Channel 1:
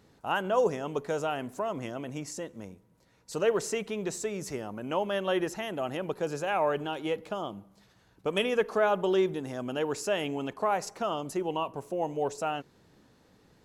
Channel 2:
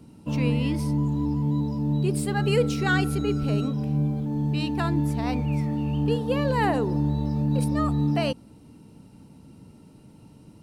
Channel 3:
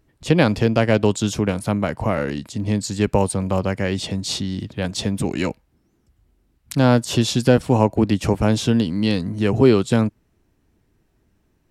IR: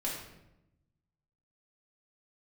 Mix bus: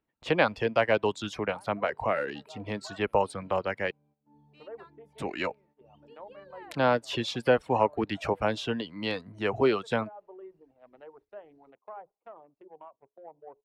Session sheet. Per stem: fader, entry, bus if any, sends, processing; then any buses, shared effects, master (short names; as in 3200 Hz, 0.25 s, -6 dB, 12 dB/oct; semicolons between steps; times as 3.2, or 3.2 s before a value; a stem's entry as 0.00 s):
-12.5 dB, 1.25 s, no send, Wiener smoothing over 25 samples; treble ducked by the level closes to 1100 Hz, closed at -27.5 dBFS; notches 60/120/180/240/300/360/420 Hz
-15.5 dB, 0.00 s, no send, compressor 2:1, threshold -32 dBFS, peak gain reduction 9 dB
-2.0 dB, 0.00 s, muted 3.91–5.18, no send, dry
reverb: off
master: reverb removal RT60 0.78 s; gate -52 dBFS, range -13 dB; three-band isolator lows -15 dB, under 450 Hz, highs -19 dB, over 3600 Hz